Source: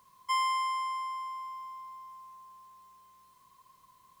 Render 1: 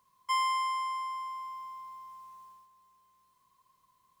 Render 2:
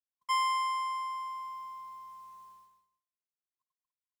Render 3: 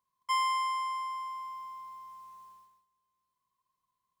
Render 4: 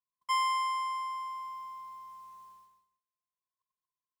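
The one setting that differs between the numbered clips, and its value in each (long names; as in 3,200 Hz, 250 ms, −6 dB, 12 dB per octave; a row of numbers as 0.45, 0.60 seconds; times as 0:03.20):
noise gate, range: −8, −59, −22, −39 decibels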